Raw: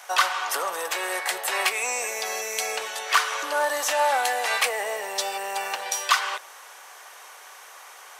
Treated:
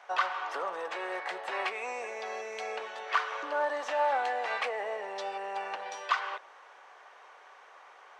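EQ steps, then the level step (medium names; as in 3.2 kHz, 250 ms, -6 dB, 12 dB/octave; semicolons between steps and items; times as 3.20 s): tape spacing loss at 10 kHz 32 dB; -3.0 dB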